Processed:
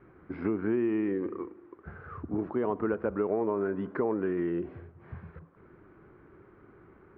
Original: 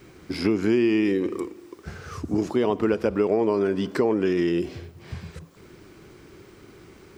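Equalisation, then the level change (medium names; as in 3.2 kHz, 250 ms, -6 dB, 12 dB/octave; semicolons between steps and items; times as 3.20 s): four-pole ladder low-pass 1.8 kHz, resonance 35%; distance through air 80 m; 0.0 dB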